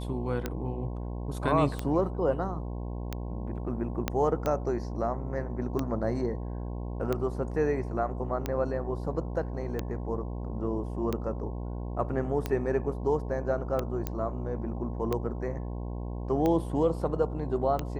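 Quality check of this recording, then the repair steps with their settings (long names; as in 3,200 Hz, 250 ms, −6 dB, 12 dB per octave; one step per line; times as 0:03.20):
mains buzz 60 Hz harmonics 18 −35 dBFS
scratch tick 45 rpm −16 dBFS
0:04.08: click −12 dBFS
0:14.07: click −16 dBFS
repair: click removal
hum removal 60 Hz, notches 18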